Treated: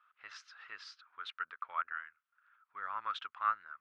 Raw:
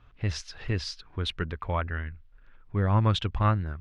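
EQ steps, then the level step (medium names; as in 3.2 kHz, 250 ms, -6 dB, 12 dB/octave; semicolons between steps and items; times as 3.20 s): band-pass filter 1.3 kHz, Q 5.7; distance through air 67 m; differentiator; +17.0 dB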